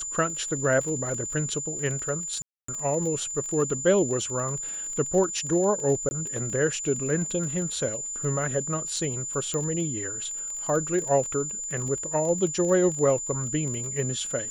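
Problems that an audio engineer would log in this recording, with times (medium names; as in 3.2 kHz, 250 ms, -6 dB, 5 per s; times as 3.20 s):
crackle 23 per s -31 dBFS
whine 7.1 kHz -31 dBFS
2.42–2.68 s: dropout 264 ms
6.09–6.11 s: dropout 20 ms
9.54 s: pop -17 dBFS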